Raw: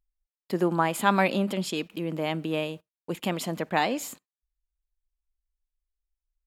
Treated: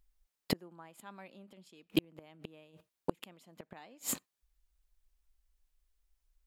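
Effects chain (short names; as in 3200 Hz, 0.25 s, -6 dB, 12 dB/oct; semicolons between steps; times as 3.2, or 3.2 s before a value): flipped gate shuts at -22 dBFS, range -37 dB; gain +8.5 dB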